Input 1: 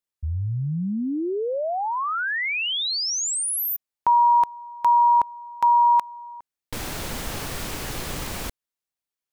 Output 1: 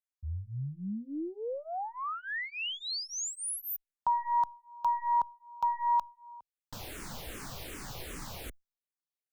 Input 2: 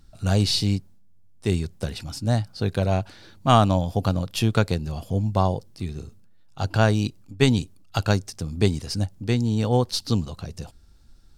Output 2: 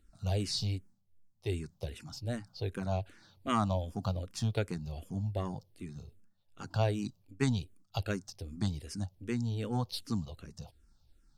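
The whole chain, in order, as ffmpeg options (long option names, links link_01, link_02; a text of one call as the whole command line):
ffmpeg -i in.wav -filter_complex "[0:a]aeval=exprs='0.668*(cos(1*acos(clip(val(0)/0.668,-1,1)))-cos(1*PI/2))+0.0841*(cos(2*acos(clip(val(0)/0.668,-1,1)))-cos(2*PI/2))':channel_layout=same,asplit=2[link_01][link_02];[link_02]afreqshift=-2.6[link_03];[link_01][link_03]amix=inputs=2:normalize=1,volume=-8.5dB" out.wav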